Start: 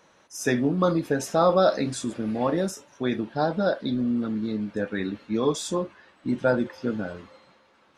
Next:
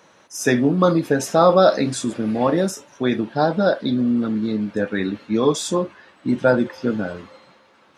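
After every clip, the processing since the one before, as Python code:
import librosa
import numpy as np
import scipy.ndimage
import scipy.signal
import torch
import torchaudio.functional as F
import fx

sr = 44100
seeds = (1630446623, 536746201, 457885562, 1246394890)

y = scipy.signal.sosfilt(scipy.signal.butter(2, 78.0, 'highpass', fs=sr, output='sos'), x)
y = F.gain(torch.from_numpy(y), 6.0).numpy()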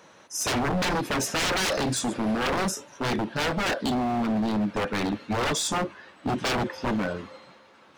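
y = 10.0 ** (-20.5 / 20.0) * (np.abs((x / 10.0 ** (-20.5 / 20.0) + 3.0) % 4.0 - 2.0) - 1.0)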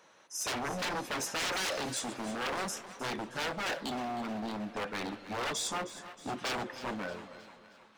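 y = fx.low_shelf(x, sr, hz=290.0, db=-10.0)
y = fx.echo_split(y, sr, split_hz=650.0, low_ms=235, high_ms=313, feedback_pct=52, wet_db=-14.0)
y = F.gain(torch.from_numpy(y), -7.0).numpy()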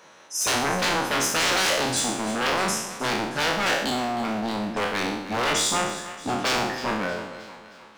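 y = fx.spec_trails(x, sr, decay_s=0.78)
y = F.gain(torch.from_numpy(y), 8.5).numpy()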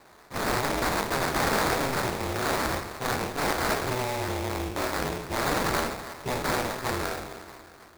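y = x * np.sin(2.0 * np.pi * 130.0 * np.arange(len(x)) / sr)
y = fx.sample_hold(y, sr, seeds[0], rate_hz=3000.0, jitter_pct=20)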